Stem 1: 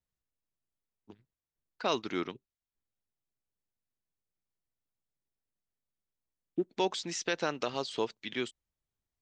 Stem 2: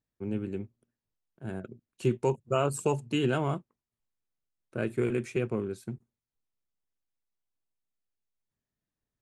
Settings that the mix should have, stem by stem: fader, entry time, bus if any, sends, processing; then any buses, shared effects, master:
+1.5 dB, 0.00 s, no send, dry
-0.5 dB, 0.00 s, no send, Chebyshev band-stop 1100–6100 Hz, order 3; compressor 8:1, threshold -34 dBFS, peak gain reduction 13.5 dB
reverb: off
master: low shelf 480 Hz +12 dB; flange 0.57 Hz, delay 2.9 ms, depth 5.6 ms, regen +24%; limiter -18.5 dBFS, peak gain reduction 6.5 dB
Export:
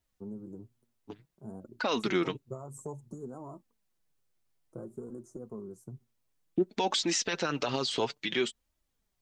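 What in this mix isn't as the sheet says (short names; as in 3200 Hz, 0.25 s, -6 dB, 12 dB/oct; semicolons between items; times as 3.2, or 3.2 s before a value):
stem 1 +1.5 dB -> +12.5 dB; master: missing low shelf 480 Hz +12 dB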